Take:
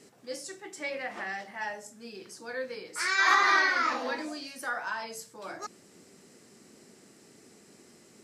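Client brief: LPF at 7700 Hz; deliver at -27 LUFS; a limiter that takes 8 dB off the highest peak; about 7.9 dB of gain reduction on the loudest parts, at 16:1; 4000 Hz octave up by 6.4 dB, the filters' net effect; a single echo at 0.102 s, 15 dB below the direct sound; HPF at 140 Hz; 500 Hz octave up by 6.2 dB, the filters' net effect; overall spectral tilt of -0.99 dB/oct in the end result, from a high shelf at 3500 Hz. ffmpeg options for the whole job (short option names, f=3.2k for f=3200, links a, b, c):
-af "highpass=140,lowpass=7.7k,equalizer=f=500:t=o:g=7,highshelf=f=3.5k:g=4,equalizer=f=4k:t=o:g=5,acompressor=threshold=-24dB:ratio=16,alimiter=limit=-23dB:level=0:latency=1,aecho=1:1:102:0.178,volume=6.5dB"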